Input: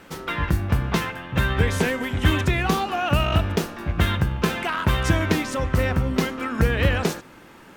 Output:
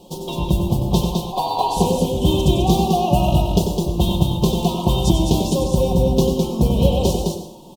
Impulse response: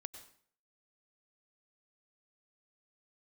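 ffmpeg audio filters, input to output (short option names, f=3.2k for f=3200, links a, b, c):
-filter_complex "[1:a]atrim=start_sample=2205[a];[0:a][a]afir=irnorm=-1:irlink=0,asettb=1/sr,asplit=3[b][c][d];[b]atrim=end=1.114[e];[c]atrim=start=1.11:end=1.77,asetpts=PTS-STARTPTS,afade=t=in:d=0.004:c=qsin,afade=t=out:st=0.656:d=0.004:c=qsin,aeval=exprs='val(0)*sin(2*PI*890*n/s)':c=same[f];[d]atrim=start=1.766[g];[e][f]acrossfade=d=0.004:c1=hsin:c2=qsin[h];[h][g]acrossfade=d=0.004:c1=qsin:c2=hsin,asuperstop=centerf=1700:order=8:qfactor=0.75,equalizer=f=980:w=3.9:g=3,aecho=1:1:5.5:0.5,aecho=1:1:93|209:0.376|0.596,volume=7.5dB"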